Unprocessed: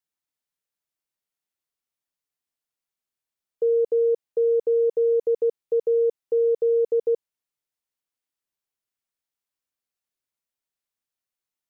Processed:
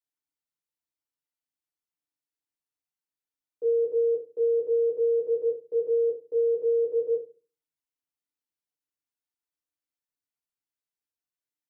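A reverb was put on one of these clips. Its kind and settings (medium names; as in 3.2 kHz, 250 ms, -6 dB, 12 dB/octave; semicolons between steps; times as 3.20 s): FDN reverb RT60 0.35 s, low-frequency decay 1.4×, high-frequency decay 0.85×, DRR -3.5 dB; trim -12 dB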